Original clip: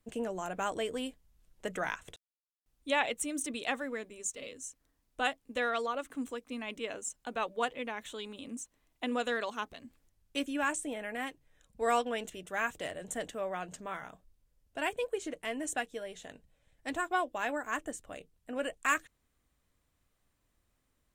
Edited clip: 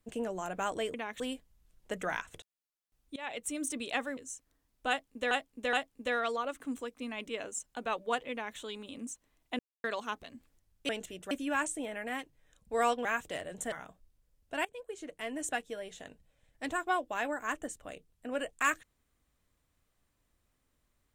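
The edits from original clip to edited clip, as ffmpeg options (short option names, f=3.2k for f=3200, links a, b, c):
-filter_complex "[0:a]asplit=14[a][b][c][d][e][f][g][h][i][j][k][l][m][n];[a]atrim=end=0.942[o];[b]atrim=start=7.818:end=8.082[p];[c]atrim=start=0.938:end=2.9,asetpts=PTS-STARTPTS,afade=t=out:st=1.958:d=0.004:c=hsin:silence=0.0668344[q];[d]atrim=start=2.9:end=3.912,asetpts=PTS-STARTPTS,afade=t=in:d=0.4:silence=0.0668344[r];[e]atrim=start=4.508:end=5.652[s];[f]atrim=start=5.228:end=5.652[t];[g]atrim=start=5.228:end=9.09,asetpts=PTS-STARTPTS,afade=t=out:st=3.858:d=0.004:c=hsin[u];[h]atrim=start=9.09:end=9.34,asetpts=PTS-STARTPTS,volume=0[v];[i]atrim=start=9.34:end=10.392,asetpts=PTS-STARTPTS,afade=t=in:d=0.004:c=hsin[w];[j]atrim=start=12.128:end=12.552[x];[k]atrim=start=10.388:end=12.132[y];[l]atrim=start=12.548:end=13.222[z];[m]atrim=start=13.958:end=14.89,asetpts=PTS-STARTPTS,afade=t=out:st=0.928:d=0.004:c=hsin:silence=0.149624[aa];[n]atrim=start=14.89,asetpts=PTS-STARTPTS,afade=t=in:d=0.82:silence=0.149624[ab];[o][p]acrossfade=d=0.004:c1=hsin:c2=hsin[ac];[q][r]concat=n=2:v=0:a=1[ad];[ac][ad]acrossfade=d=0.004:c1=hsin:c2=hsin[ae];[ae][s]acrossfade=d=0.004:c1=hsin:c2=hsin[af];[af][t]acrossfade=d=0.004:c1=hsin:c2=hsin[ag];[u][v][w]concat=n=3:v=0:a=1[ah];[ag][ah]acrossfade=d=0.004:c1=hsin:c2=hsin[ai];[ai][x]acrossfade=d=0.004:c1=hsin:c2=hsin[aj];[aj][y]acrossfade=d=0.004:c1=hsin:c2=hsin[ak];[ak][z]acrossfade=d=0.004:c1=hsin:c2=hsin[al];[aa][ab]concat=n=2:v=0:a=1[am];[al][am]acrossfade=d=0.004:c1=hsin:c2=hsin"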